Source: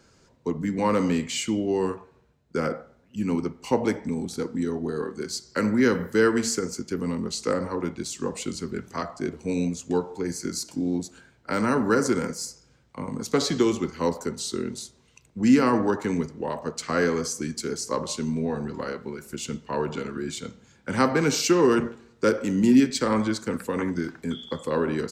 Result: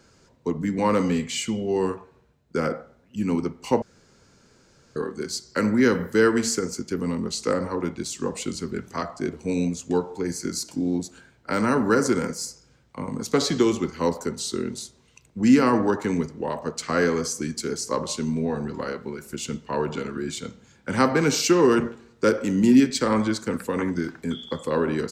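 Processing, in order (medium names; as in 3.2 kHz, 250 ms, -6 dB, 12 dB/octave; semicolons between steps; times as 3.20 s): 1.02–1.76 s: comb of notches 310 Hz; 3.82–4.96 s: room tone; trim +1.5 dB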